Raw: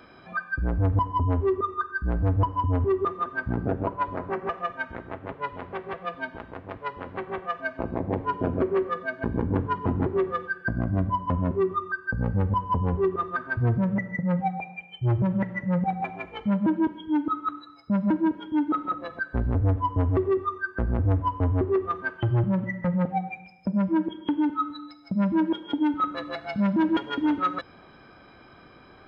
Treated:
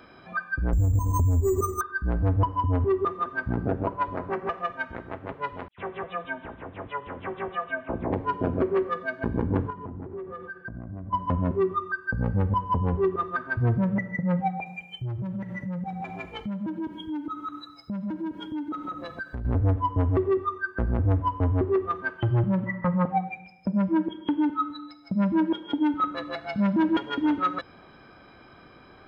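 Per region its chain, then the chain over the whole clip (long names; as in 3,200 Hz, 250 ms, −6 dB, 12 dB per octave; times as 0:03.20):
0:00.73–0:01.81: spectral tilt −4.5 dB per octave + downward compressor 8 to 1, threshold −19 dBFS + bad sample-rate conversion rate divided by 6×, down filtered, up hold
0:05.68–0:08.12: all-pass dispersion lows, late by 102 ms, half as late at 2,700 Hz + bad sample-rate conversion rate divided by 6×, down none, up filtered
0:09.70–0:11.13: low-pass filter 1,200 Hz 6 dB per octave + downward compressor, threshold −34 dBFS
0:14.66–0:19.45: bass and treble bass +5 dB, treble +12 dB + downward compressor 4 to 1, threshold −31 dBFS
0:22.66–0:23.24: low-pass filter 4,100 Hz + parametric band 1,100 Hz +14.5 dB 0.41 octaves
whole clip: no processing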